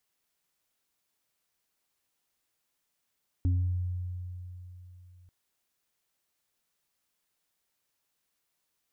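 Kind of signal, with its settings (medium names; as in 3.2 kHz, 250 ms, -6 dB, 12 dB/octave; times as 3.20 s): sine partials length 1.84 s, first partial 90 Hz, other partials 271 Hz, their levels -10 dB, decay 3.44 s, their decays 0.54 s, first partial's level -22 dB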